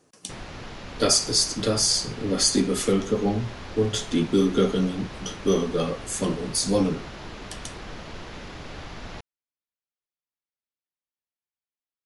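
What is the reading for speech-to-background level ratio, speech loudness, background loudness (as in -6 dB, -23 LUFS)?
16.0 dB, -23.5 LUFS, -39.5 LUFS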